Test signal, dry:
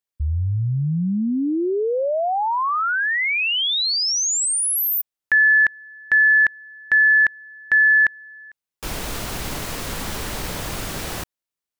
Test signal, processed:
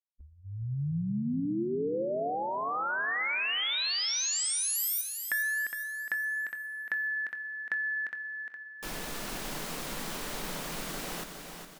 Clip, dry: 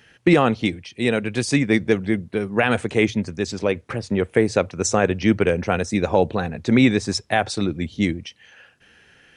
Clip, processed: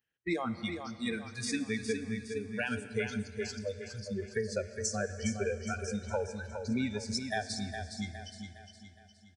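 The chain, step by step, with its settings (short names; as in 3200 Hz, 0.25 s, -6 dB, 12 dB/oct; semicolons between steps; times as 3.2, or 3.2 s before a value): spectral noise reduction 26 dB; dynamic EQ 950 Hz, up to -4 dB, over -33 dBFS, Q 1.8; compressor, threshold -20 dBFS; feedback echo 0.412 s, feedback 44%, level -7.5 dB; plate-style reverb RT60 3.1 s, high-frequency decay 0.85×, DRR 12 dB; gain -9 dB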